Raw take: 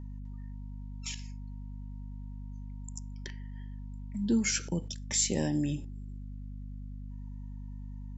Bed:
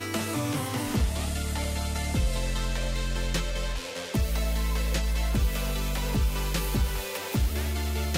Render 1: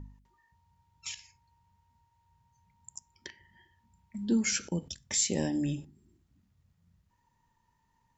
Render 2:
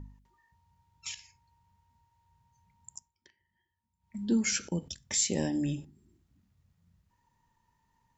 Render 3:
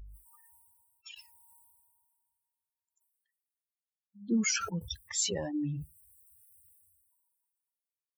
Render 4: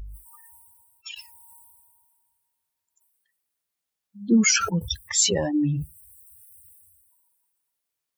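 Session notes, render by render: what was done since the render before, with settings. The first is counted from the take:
de-hum 50 Hz, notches 5
2.95–4.16 dip -17 dB, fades 0.17 s
per-bin expansion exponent 3; sustainer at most 29 dB/s
gain +10.5 dB

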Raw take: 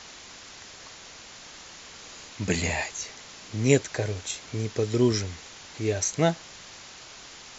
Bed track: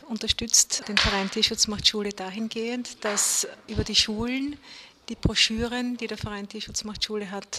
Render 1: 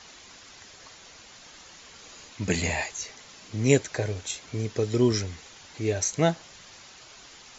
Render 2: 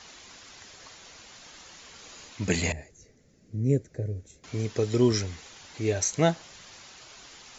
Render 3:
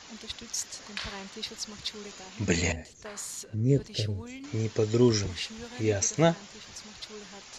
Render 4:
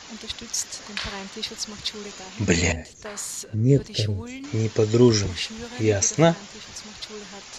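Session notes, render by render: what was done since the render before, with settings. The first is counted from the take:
denoiser 6 dB, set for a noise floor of -46 dBFS
2.72–4.44 EQ curve 150 Hz 0 dB, 530 Hz -8 dB, 980 Hz -30 dB, 1900 Hz -19 dB, 3100 Hz -29 dB, 6400 Hz -20 dB
add bed track -15 dB
gain +6 dB; limiter -3 dBFS, peak gain reduction 1.5 dB

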